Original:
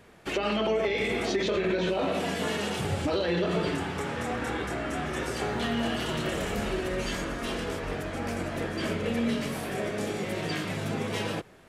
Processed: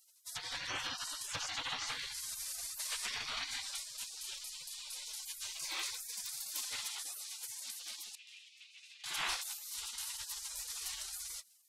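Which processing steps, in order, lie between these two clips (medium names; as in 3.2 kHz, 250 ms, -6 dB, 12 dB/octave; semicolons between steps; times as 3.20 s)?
spectral gate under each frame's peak -30 dB weak; 8.15–9.04 s: ladder band-pass 2.7 kHz, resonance 70%; trim +8.5 dB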